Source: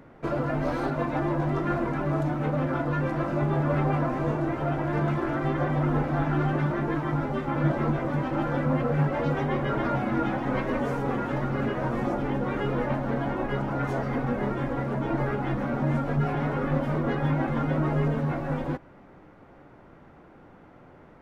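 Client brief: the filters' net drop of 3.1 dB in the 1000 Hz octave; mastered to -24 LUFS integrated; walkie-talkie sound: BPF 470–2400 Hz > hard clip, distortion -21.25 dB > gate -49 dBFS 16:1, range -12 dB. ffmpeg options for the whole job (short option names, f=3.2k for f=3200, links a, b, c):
-af "highpass=470,lowpass=2.4k,equalizer=f=1k:t=o:g=-3.5,asoftclip=type=hard:threshold=-26.5dB,agate=range=-12dB:threshold=-49dB:ratio=16,volume=10.5dB"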